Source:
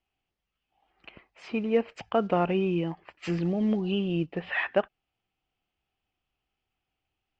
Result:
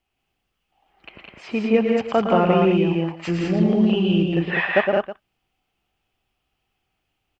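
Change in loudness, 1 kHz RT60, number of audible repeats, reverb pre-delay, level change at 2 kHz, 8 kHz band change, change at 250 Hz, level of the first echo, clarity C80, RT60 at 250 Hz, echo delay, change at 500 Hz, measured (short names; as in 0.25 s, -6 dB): +8.5 dB, none, 4, none, +8.5 dB, n/a, +9.0 dB, -8.5 dB, none, none, 0.11 s, +8.5 dB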